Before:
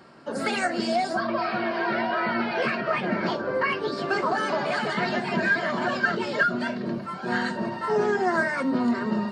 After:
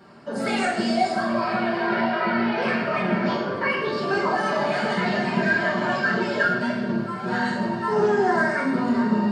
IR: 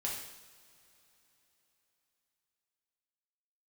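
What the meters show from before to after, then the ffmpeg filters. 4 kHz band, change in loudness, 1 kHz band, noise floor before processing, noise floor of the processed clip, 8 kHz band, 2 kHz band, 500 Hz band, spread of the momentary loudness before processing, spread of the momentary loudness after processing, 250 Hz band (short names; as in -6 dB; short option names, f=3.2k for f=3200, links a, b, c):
+1.5 dB, +2.5 dB, +2.5 dB, -35 dBFS, -30 dBFS, +1.0 dB, +2.0 dB, +2.5 dB, 5 LU, 4 LU, +4.0 dB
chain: -filter_complex "[0:a]lowshelf=f=460:g=3.5[a];[1:a]atrim=start_sample=2205[b];[a][b]afir=irnorm=-1:irlink=0,volume=-1dB"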